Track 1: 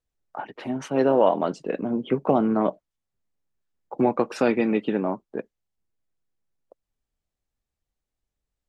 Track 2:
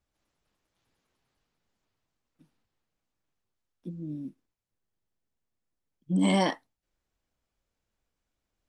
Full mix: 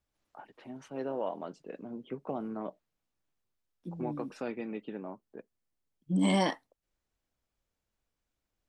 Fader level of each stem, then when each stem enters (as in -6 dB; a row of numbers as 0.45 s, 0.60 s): -16.0 dB, -2.5 dB; 0.00 s, 0.00 s